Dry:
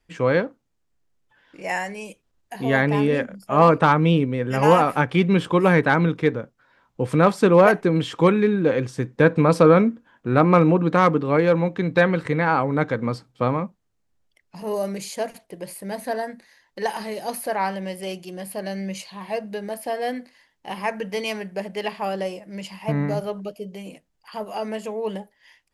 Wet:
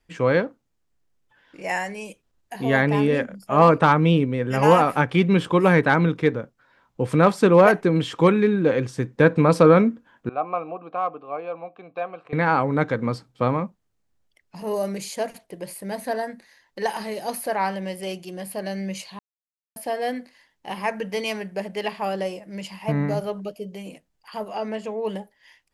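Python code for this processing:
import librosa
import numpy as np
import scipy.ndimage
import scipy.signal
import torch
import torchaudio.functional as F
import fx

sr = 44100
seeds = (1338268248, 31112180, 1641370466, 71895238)

y = fx.vowel_filter(x, sr, vowel='a', at=(10.29, 12.33))
y = fx.air_absorb(y, sr, metres=72.0, at=(24.48, 25.05))
y = fx.edit(y, sr, fx.silence(start_s=19.19, length_s=0.57), tone=tone)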